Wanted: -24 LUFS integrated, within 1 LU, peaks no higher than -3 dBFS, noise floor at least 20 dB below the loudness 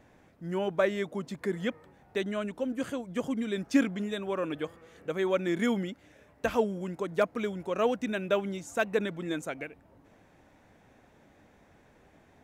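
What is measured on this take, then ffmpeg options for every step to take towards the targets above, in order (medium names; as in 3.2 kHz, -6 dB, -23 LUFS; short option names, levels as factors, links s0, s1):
loudness -31.5 LUFS; peak level -14.0 dBFS; loudness target -24.0 LUFS
-> -af "volume=2.37"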